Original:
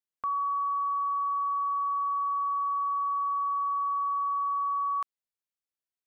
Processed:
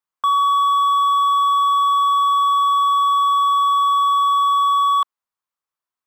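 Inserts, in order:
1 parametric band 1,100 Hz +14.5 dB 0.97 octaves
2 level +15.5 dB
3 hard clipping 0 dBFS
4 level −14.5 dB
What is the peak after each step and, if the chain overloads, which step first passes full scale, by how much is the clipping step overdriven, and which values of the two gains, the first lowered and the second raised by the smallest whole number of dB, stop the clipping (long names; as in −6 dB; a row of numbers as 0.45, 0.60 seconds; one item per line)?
−11.5, +4.0, 0.0, −14.5 dBFS
step 2, 4.0 dB
step 2 +11.5 dB, step 4 −10.5 dB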